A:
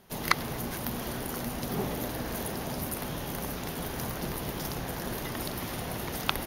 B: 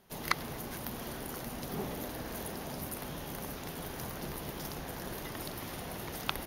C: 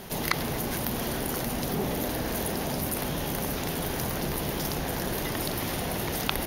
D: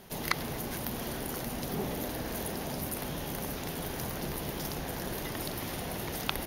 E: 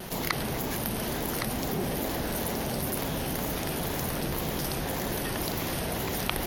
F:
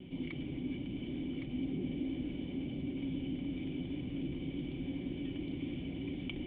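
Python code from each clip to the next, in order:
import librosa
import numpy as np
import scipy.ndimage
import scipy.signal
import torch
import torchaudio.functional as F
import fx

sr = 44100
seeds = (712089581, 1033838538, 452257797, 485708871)

y1 = fx.hum_notches(x, sr, base_hz=60, count=4)
y1 = y1 * librosa.db_to_amplitude(-5.5)
y2 = fx.peak_eq(y1, sr, hz=1200.0, db=-3.0, octaves=0.77)
y2 = fx.env_flatten(y2, sr, amount_pct=50)
y2 = y2 * librosa.db_to_amplitude(4.0)
y3 = fx.upward_expand(y2, sr, threshold_db=-39.0, expansion=1.5)
y3 = y3 * librosa.db_to_amplitude(-2.5)
y4 = fx.wow_flutter(y3, sr, seeds[0], rate_hz=2.1, depth_cents=140.0)
y4 = y4 + 10.0 ** (-9.5 / 20.0) * np.pad(y4, (int(1113 * sr / 1000.0), 0))[:len(y4)]
y4 = fx.env_flatten(y4, sr, amount_pct=50)
y5 = fx.formant_cascade(y4, sr, vowel='i')
y5 = fx.notch_comb(y5, sr, f0_hz=220.0)
y5 = y5 * librosa.db_to_amplitude(3.0)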